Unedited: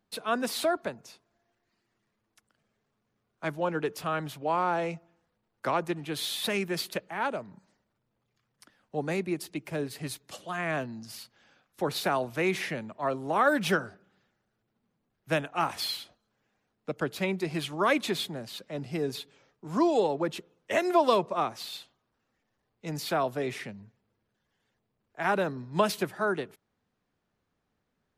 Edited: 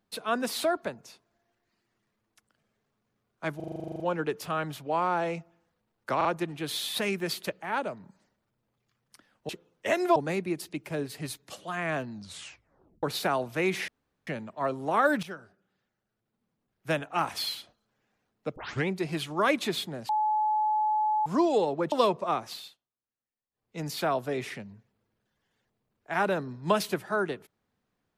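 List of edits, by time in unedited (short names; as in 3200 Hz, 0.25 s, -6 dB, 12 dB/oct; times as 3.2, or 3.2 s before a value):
3.56 stutter 0.04 s, 12 plays
5.73 stutter 0.04 s, 3 plays
10.94 tape stop 0.90 s
12.69 insert room tone 0.39 s
13.65–15.56 fade in, from -16.5 dB
16.98 tape start 0.32 s
18.51–19.68 bleep 856 Hz -23 dBFS
20.34–21.01 move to 8.97
21.61–22.86 dip -22.5 dB, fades 0.25 s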